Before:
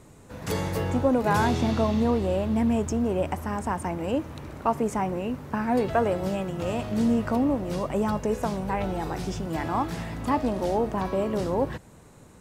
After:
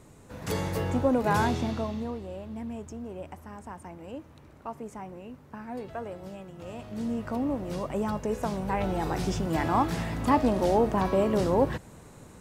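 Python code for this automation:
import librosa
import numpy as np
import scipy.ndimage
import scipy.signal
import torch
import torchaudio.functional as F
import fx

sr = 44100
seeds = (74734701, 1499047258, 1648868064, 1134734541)

y = fx.gain(x, sr, db=fx.line((1.41, -2.0), (2.25, -13.5), (6.52, -13.5), (7.62, -4.0), (8.23, -4.0), (9.23, 2.0)))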